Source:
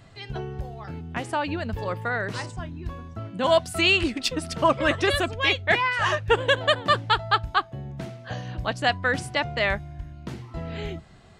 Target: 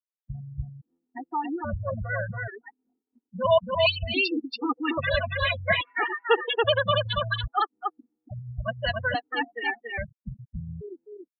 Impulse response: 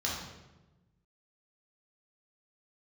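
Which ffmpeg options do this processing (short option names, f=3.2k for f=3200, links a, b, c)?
-filter_complex "[0:a]afftfilt=real='re*gte(hypot(re,im),0.141)':imag='im*gte(hypot(re,im),0.141)':win_size=1024:overlap=0.75,asplit=2[a][b];[b]aecho=0:1:281:0.668[c];[a][c]amix=inputs=2:normalize=0,afftfilt=real='re*gt(sin(2*PI*0.6*pts/sr)*(1-2*mod(floor(b*sr/1024/240),2)),0)':imag='im*gt(sin(2*PI*0.6*pts/sr)*(1-2*mod(floor(b*sr/1024/240),2)),0)':win_size=1024:overlap=0.75"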